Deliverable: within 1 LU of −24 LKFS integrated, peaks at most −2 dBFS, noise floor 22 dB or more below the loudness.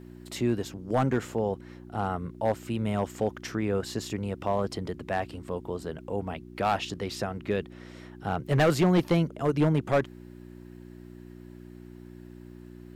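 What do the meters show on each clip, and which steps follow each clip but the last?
share of clipped samples 0.6%; peaks flattened at −17.0 dBFS; mains hum 60 Hz; hum harmonics up to 360 Hz; level of the hum −41 dBFS; integrated loudness −29.0 LKFS; sample peak −17.0 dBFS; target loudness −24.0 LKFS
→ clipped peaks rebuilt −17 dBFS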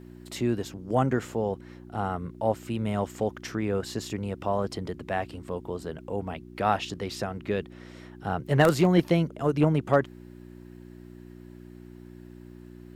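share of clipped samples 0.0%; mains hum 60 Hz; hum harmonics up to 360 Hz; level of the hum −41 dBFS
→ hum removal 60 Hz, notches 6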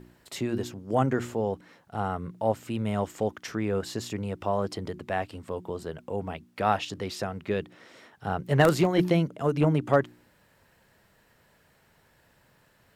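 mains hum none found; integrated loudness −28.5 LKFS; sample peak −7.5 dBFS; target loudness −24.0 LKFS
→ level +4.5 dB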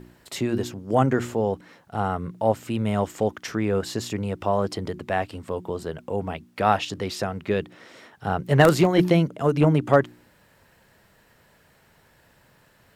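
integrated loudness −24.0 LKFS; sample peak −3.0 dBFS; background noise floor −59 dBFS

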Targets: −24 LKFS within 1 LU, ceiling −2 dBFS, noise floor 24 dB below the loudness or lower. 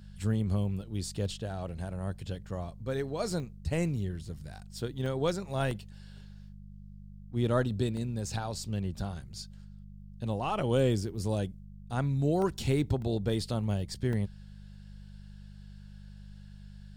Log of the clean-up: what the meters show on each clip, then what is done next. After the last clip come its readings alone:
number of dropouts 8; longest dropout 1.7 ms; mains hum 50 Hz; hum harmonics up to 200 Hz; level of the hum −47 dBFS; integrated loudness −32.5 LKFS; sample peak −14.5 dBFS; target loudness −24.0 LKFS
→ repair the gap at 0:03.40/0:03.97/0:05.06/0:05.71/0:07.97/0:12.42/0:13.02/0:14.13, 1.7 ms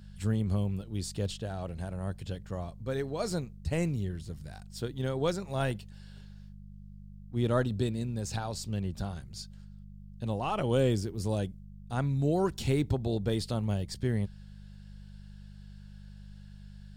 number of dropouts 0; mains hum 50 Hz; hum harmonics up to 200 Hz; level of the hum −47 dBFS
→ hum removal 50 Hz, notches 4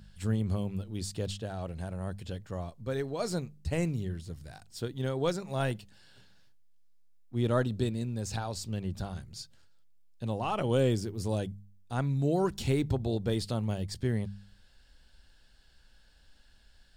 mains hum none found; integrated loudness −33.0 LKFS; sample peak −15.0 dBFS; target loudness −24.0 LKFS
→ level +9 dB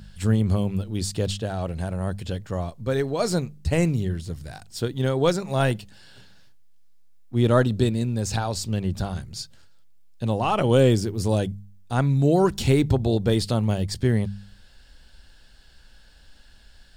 integrated loudness −24.0 LKFS; sample peak −6.0 dBFS; background noise floor −51 dBFS

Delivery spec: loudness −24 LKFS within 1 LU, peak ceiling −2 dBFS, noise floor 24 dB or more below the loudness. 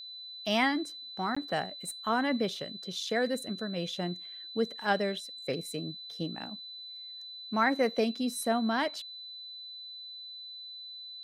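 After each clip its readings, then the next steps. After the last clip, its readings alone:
number of dropouts 1; longest dropout 15 ms; interfering tone 4,000 Hz; level of the tone −42 dBFS; integrated loudness −33.0 LKFS; sample peak −14.0 dBFS; target loudness −24.0 LKFS
→ repair the gap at 0:01.35, 15 ms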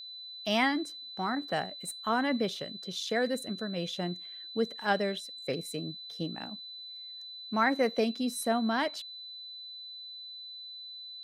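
number of dropouts 0; interfering tone 4,000 Hz; level of the tone −42 dBFS
→ notch filter 4,000 Hz, Q 30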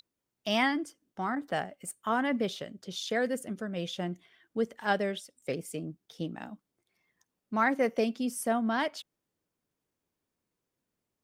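interfering tone none found; integrated loudness −32.0 LKFS; sample peak −14.0 dBFS; target loudness −24.0 LKFS
→ level +8 dB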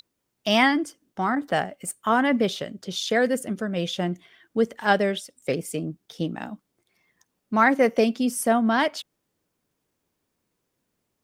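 integrated loudness −24.0 LKFS; sample peak −6.0 dBFS; background noise floor −78 dBFS

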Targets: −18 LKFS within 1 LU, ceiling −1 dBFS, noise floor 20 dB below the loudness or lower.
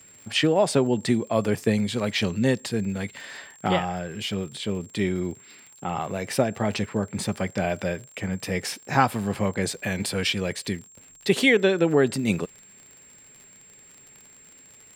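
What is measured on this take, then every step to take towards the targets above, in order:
crackle rate 51 per second; interfering tone 7,500 Hz; level of the tone −49 dBFS; integrated loudness −25.5 LKFS; sample peak −4.5 dBFS; target loudness −18.0 LKFS
→ click removal
notch filter 7,500 Hz, Q 30
level +7.5 dB
brickwall limiter −1 dBFS

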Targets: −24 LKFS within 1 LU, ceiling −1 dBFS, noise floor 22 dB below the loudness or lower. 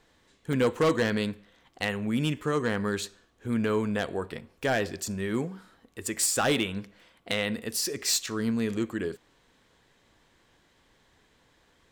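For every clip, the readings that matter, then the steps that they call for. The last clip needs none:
share of clipped samples 0.4%; peaks flattened at −18.5 dBFS; number of dropouts 1; longest dropout 3.1 ms; integrated loudness −29.0 LKFS; sample peak −18.5 dBFS; target loudness −24.0 LKFS
→ clipped peaks rebuilt −18.5 dBFS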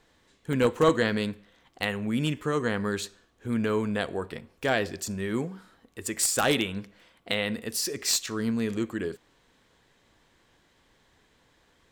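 share of clipped samples 0.0%; number of dropouts 1; longest dropout 3.1 ms
→ repair the gap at 0:00.53, 3.1 ms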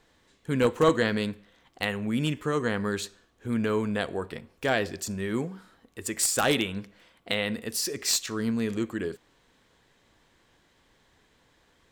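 number of dropouts 0; integrated loudness −28.0 LKFS; sample peak −9.5 dBFS; target loudness −24.0 LKFS
→ level +4 dB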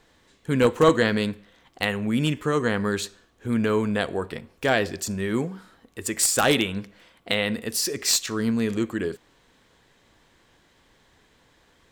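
integrated loudness −24.0 LKFS; sample peak −5.5 dBFS; background noise floor −61 dBFS

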